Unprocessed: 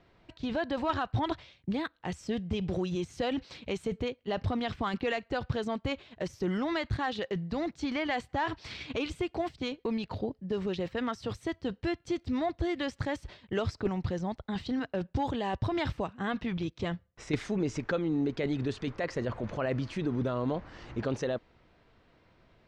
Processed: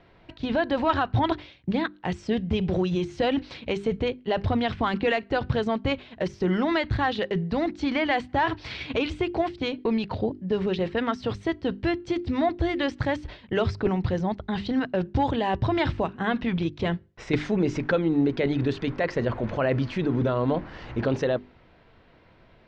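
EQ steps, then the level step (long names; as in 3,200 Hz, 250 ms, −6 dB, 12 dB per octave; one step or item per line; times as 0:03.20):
low-pass filter 4,200 Hz 12 dB per octave
mains-hum notches 50/100/150/200/250/300/350/400 Hz
notch filter 1,200 Hz, Q 20
+7.5 dB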